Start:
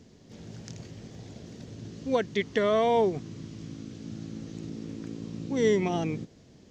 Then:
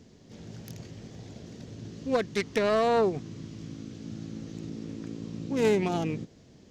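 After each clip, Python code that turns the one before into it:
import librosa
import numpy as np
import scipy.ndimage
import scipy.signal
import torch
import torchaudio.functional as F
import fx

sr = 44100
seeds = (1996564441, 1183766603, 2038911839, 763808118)

y = fx.self_delay(x, sr, depth_ms=0.17)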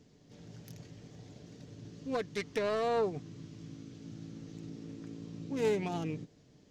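y = x + 0.34 * np.pad(x, (int(6.8 * sr / 1000.0), 0))[:len(x)]
y = y * librosa.db_to_amplitude(-7.5)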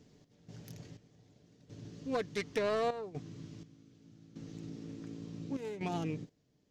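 y = fx.step_gate(x, sr, bpm=62, pattern='x.xx...xxxx', floor_db=-12.0, edge_ms=4.5)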